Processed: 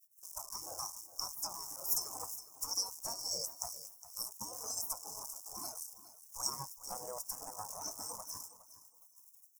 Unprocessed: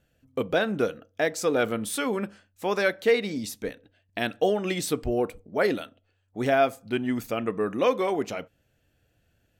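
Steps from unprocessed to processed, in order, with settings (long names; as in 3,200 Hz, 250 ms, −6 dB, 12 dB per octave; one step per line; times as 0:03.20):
downward compressor 12 to 1, threshold −37 dBFS, peak gain reduction 21 dB
surface crackle 450 per second −49 dBFS
gate on every frequency bin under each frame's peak −25 dB weak
drawn EQ curve 1,100 Hz 0 dB, 1,700 Hz −17 dB, 3,600 Hz −29 dB, 5,400 Hz +9 dB
on a send: repeating echo 412 ms, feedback 35%, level −10 dB
on the sum: every bin expanded away from the loudest bin 1.5 to 1
level +17 dB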